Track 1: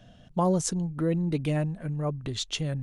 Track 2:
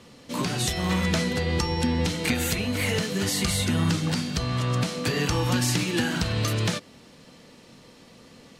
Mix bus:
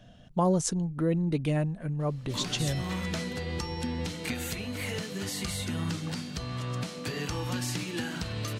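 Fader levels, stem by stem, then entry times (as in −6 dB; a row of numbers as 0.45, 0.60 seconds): −0.5, −8.5 decibels; 0.00, 2.00 seconds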